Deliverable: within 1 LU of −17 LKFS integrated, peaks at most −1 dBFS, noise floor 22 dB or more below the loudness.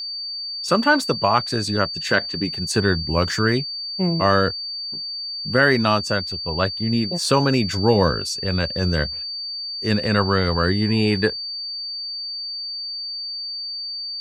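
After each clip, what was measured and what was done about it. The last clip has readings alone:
interfering tone 4,600 Hz; level of the tone −27 dBFS; integrated loudness −21.5 LKFS; sample peak −2.5 dBFS; target loudness −17.0 LKFS
→ notch filter 4,600 Hz, Q 30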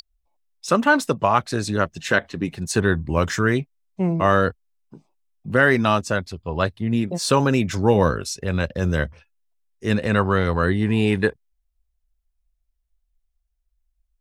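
interfering tone none found; integrated loudness −21.5 LKFS; sample peak −2.5 dBFS; target loudness −17.0 LKFS
→ level +4.5 dB
brickwall limiter −1 dBFS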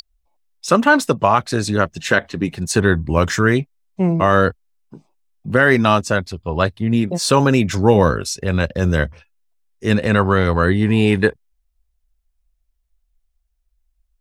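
integrated loudness −17.0 LKFS; sample peak −1.0 dBFS; background noise floor −69 dBFS

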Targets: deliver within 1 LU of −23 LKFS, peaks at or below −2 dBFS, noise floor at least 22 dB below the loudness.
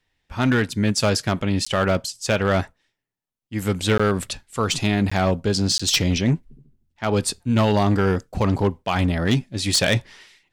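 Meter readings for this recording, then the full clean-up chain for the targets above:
share of clipped samples 1.0%; peaks flattened at −12.5 dBFS; number of dropouts 4; longest dropout 15 ms; integrated loudness −21.5 LKFS; sample peak −12.5 dBFS; target loudness −23.0 LKFS
→ clipped peaks rebuilt −12.5 dBFS
repair the gap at 0:01.65/0:03.98/0:05.10/0:05.78, 15 ms
level −1.5 dB

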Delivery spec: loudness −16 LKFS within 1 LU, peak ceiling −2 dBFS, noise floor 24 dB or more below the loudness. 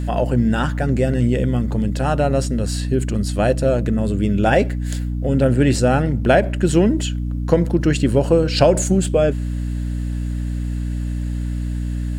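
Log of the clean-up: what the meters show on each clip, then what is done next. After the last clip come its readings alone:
mains hum 60 Hz; hum harmonics up to 300 Hz; level of the hum −20 dBFS; integrated loudness −19.0 LKFS; sample peak −1.5 dBFS; target loudness −16.0 LKFS
→ hum removal 60 Hz, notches 5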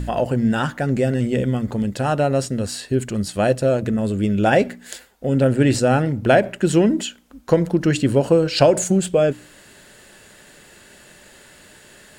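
mains hum none found; integrated loudness −19.5 LKFS; sample peak −1.5 dBFS; target loudness −16.0 LKFS
→ level +3.5 dB
brickwall limiter −2 dBFS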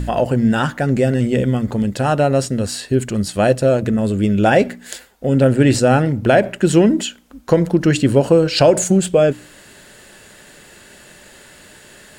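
integrated loudness −16.0 LKFS; sample peak −2.0 dBFS; background noise floor −44 dBFS

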